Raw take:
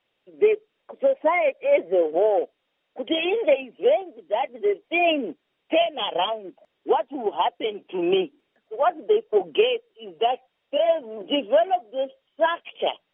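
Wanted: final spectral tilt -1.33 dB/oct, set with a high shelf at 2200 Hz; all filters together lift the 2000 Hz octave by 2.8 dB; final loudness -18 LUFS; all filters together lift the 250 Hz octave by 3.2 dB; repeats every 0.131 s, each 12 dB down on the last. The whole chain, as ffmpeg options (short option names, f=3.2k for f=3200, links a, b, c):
-af "equalizer=f=250:t=o:g=5,equalizer=f=2k:t=o:g=9,highshelf=f=2.2k:g=-8.5,aecho=1:1:131|262|393:0.251|0.0628|0.0157,volume=4.5dB"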